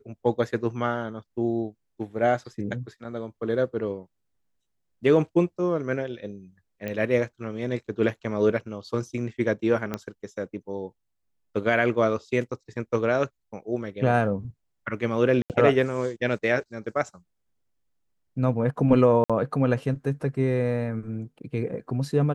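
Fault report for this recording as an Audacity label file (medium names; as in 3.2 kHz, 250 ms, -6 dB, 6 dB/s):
6.880000	6.880000	pop -19 dBFS
9.940000	9.940000	pop -14 dBFS
15.420000	15.500000	dropout 78 ms
19.240000	19.300000	dropout 56 ms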